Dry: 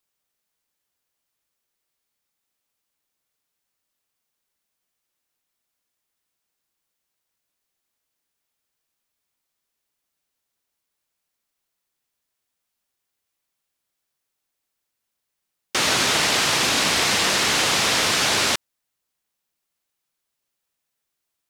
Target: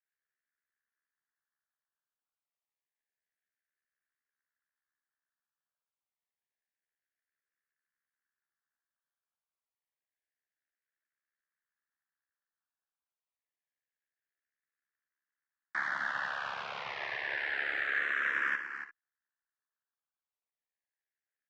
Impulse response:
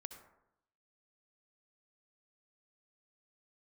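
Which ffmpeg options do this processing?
-filter_complex "[1:a]atrim=start_sample=2205,atrim=end_sample=3969,asetrate=57330,aresample=44100[s0];[0:a][s0]afir=irnorm=-1:irlink=0,aeval=exprs='val(0)*sin(2*PI*35*n/s)':c=same,highpass=f=780:p=1,alimiter=limit=0.0794:level=0:latency=1:release=12,afreqshift=-51,lowpass=f=1700:t=q:w=6.1,aecho=1:1:284:0.335,asplit=2[s1][s2];[s2]afreqshift=-0.28[s3];[s1][s3]amix=inputs=2:normalize=1,volume=0.75"

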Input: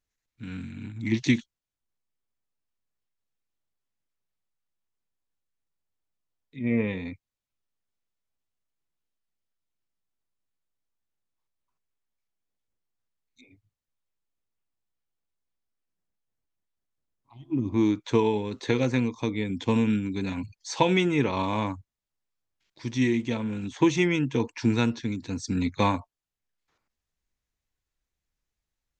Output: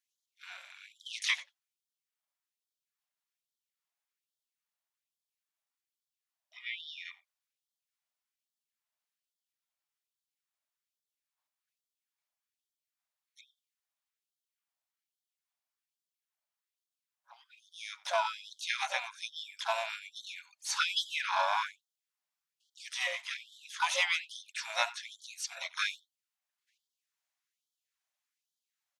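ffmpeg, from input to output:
-filter_complex "[0:a]asplit=2[s0][s1];[s1]adelay=90,highpass=300,lowpass=3400,asoftclip=type=hard:threshold=0.15,volume=0.112[s2];[s0][s2]amix=inputs=2:normalize=0,asplit=3[s3][s4][s5];[s4]asetrate=22050,aresample=44100,atempo=2,volume=0.158[s6];[s5]asetrate=66075,aresample=44100,atempo=0.66742,volume=0.447[s7];[s3][s6][s7]amix=inputs=3:normalize=0,afftfilt=real='re*gte(b*sr/1024,530*pow(3100/530,0.5+0.5*sin(2*PI*1.2*pts/sr)))':imag='im*gte(b*sr/1024,530*pow(3100/530,0.5+0.5*sin(2*PI*1.2*pts/sr)))':win_size=1024:overlap=0.75"

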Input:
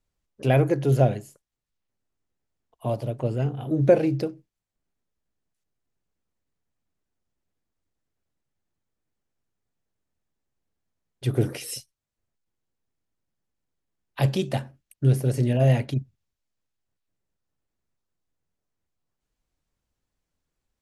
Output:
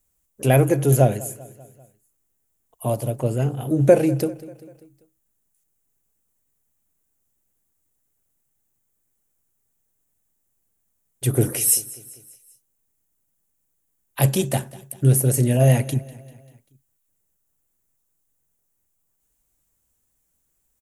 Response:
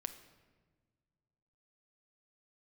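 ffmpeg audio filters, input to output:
-filter_complex "[0:a]aexciter=amount=6.4:drive=4.9:freq=6700,asplit=2[s0][s1];[s1]aecho=0:1:196|392|588|784:0.1|0.055|0.0303|0.0166[s2];[s0][s2]amix=inputs=2:normalize=0,volume=1.5"

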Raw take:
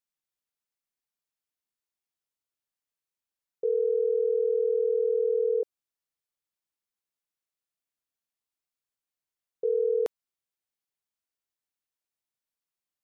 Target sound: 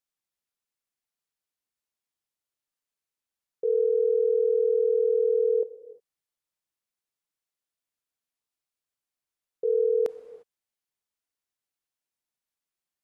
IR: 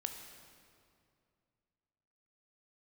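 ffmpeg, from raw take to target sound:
-filter_complex "[0:a]asplit=2[s0][s1];[1:a]atrim=start_sample=2205,afade=t=out:st=0.25:d=0.01,atrim=end_sample=11466,asetrate=24696,aresample=44100[s2];[s1][s2]afir=irnorm=-1:irlink=0,volume=0.596[s3];[s0][s3]amix=inputs=2:normalize=0,volume=0.631"

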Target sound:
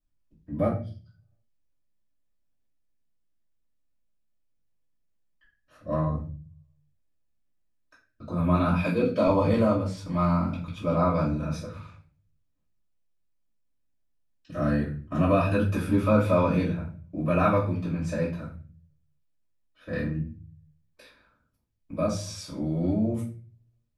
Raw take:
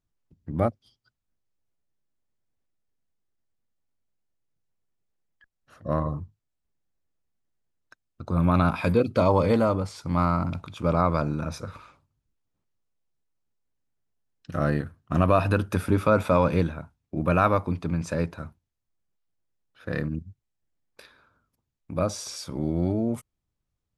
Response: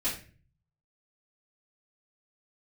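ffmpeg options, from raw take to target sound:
-filter_complex "[0:a]asettb=1/sr,asplit=3[s0][s1][s2];[s0]atrim=end=8.794[s3];[s1]atrim=start=8.79:end=9.27,asetpts=PTS-STARTPTS,afade=t=in:d=0.004:c=qsin,afade=t=out:st=0.476:d=0.004:c=qsin,highpass=170[s4];[s2]atrim=start=9.266[s5];[s3][s4]acrossfade=d=0.004:c1=hsin:c2=qsin[s6];[s6][s5]acrossfade=d=0.004:c1=qsin:c2=hsin[s7];[1:a]atrim=start_sample=2205[s8];[s7][s8]afir=irnorm=-1:irlink=0,volume=0.376"

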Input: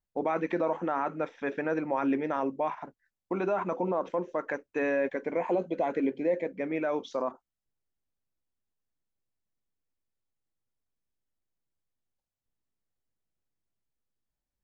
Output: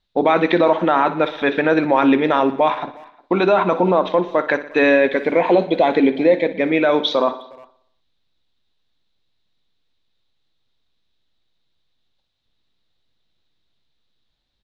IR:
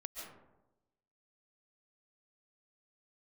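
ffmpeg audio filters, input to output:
-filter_complex "[0:a]asplit=2[s0][s1];[s1]aecho=0:1:60|120|180|240|300|360:0.188|0.105|0.0591|0.0331|0.0185|0.0104[s2];[s0][s2]amix=inputs=2:normalize=0,acontrast=62,lowpass=f=3800:t=q:w=7,asplit=2[s3][s4];[s4]adelay=360,highpass=300,lowpass=3400,asoftclip=type=hard:threshold=0.1,volume=0.0562[s5];[s3][s5]amix=inputs=2:normalize=0,volume=2.24"

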